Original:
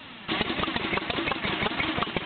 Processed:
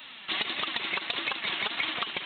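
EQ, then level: tilt +4 dB/oct; -6.0 dB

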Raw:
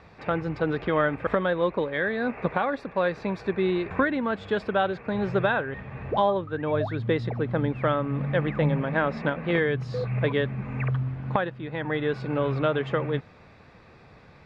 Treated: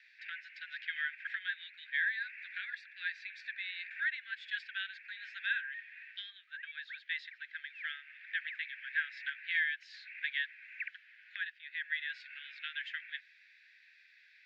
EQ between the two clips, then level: steep high-pass 1600 Hz 96 dB/oct; air absorption 130 m; 0.0 dB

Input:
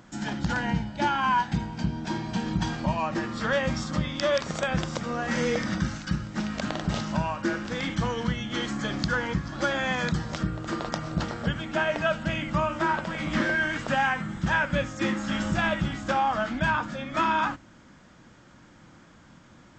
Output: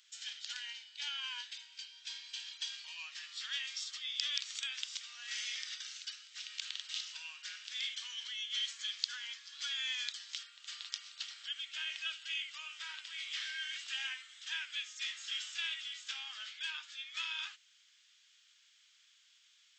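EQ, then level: ladder high-pass 2600 Hz, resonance 40%; +3.5 dB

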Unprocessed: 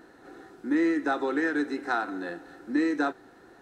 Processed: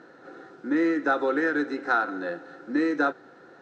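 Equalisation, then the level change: speaker cabinet 130–6500 Hz, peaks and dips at 150 Hz +7 dB, 530 Hz +8 dB, 1400 Hz +7 dB; 0.0 dB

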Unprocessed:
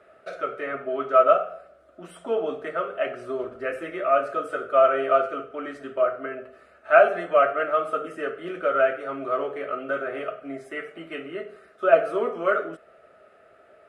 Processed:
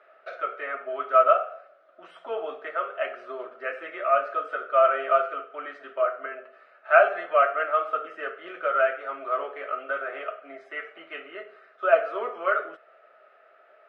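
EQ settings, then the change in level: HPF 740 Hz 12 dB/oct; air absorption 230 m; +2.5 dB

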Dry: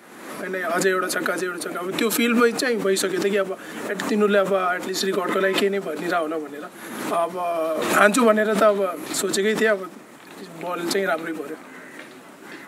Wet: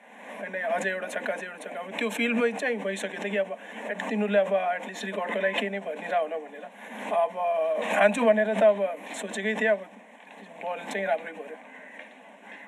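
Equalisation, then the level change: elliptic high-pass 200 Hz; air absorption 88 m; fixed phaser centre 1300 Hz, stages 6; 0.0 dB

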